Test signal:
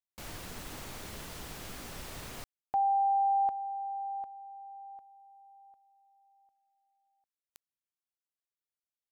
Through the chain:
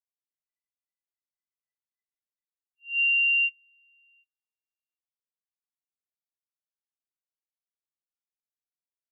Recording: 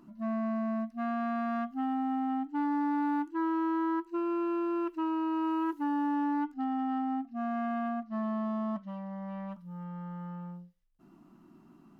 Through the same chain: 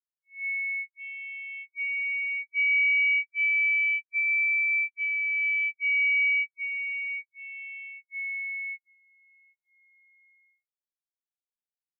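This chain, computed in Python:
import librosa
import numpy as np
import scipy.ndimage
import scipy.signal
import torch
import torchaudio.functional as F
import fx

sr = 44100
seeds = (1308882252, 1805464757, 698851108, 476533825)

y = fx.band_swap(x, sr, width_hz=2000)
y = fx.auto_swell(y, sr, attack_ms=258.0)
y = fx.spectral_expand(y, sr, expansion=4.0)
y = y * 10.0 ** (4.0 / 20.0)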